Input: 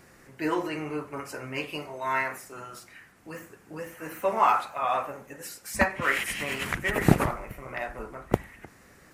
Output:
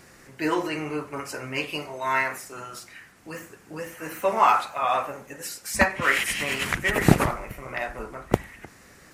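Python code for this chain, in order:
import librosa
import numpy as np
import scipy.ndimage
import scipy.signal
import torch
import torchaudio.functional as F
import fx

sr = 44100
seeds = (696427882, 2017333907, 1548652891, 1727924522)

y = fx.peak_eq(x, sr, hz=5300.0, db=4.5, octaves=2.2)
y = y * 10.0 ** (2.5 / 20.0)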